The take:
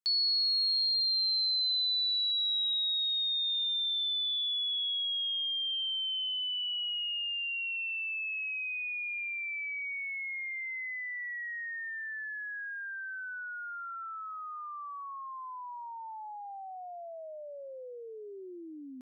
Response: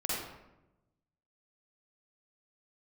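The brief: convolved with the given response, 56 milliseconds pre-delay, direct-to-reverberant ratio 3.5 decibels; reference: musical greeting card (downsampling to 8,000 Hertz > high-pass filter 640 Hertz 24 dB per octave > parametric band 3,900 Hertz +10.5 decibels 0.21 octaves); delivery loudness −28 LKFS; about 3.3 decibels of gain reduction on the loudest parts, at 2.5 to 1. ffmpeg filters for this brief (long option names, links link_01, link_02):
-filter_complex "[0:a]acompressor=threshold=-33dB:ratio=2.5,asplit=2[link_01][link_02];[1:a]atrim=start_sample=2205,adelay=56[link_03];[link_02][link_03]afir=irnorm=-1:irlink=0,volume=-9.5dB[link_04];[link_01][link_04]amix=inputs=2:normalize=0,aresample=8000,aresample=44100,highpass=frequency=640:width=0.5412,highpass=frequency=640:width=1.3066,equalizer=frequency=3900:width_type=o:width=0.21:gain=10.5,volume=3dB"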